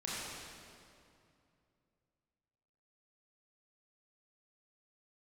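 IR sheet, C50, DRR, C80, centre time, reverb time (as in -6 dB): -4.0 dB, -8.0 dB, -2.5 dB, 0.162 s, 2.5 s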